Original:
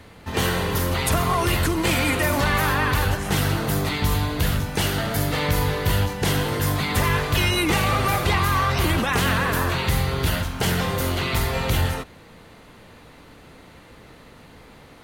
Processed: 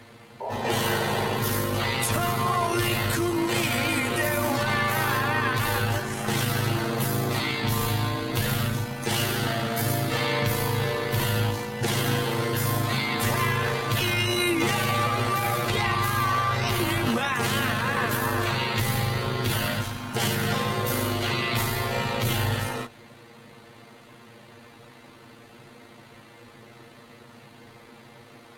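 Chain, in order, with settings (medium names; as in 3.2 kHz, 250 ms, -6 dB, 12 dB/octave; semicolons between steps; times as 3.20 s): high-pass 100 Hz 12 dB/octave; peak limiter -14 dBFS, peak gain reduction 5 dB; granular stretch 1.9×, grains 36 ms; painted sound noise, 0.40–1.37 s, 390–1000 Hz -32 dBFS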